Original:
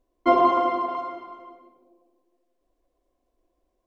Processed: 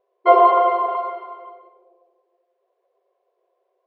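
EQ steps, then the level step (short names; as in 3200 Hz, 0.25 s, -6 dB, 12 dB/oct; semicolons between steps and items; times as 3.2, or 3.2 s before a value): brick-wall FIR high-pass 370 Hz; air absorption 280 m; low shelf 470 Hz +8.5 dB; +5.5 dB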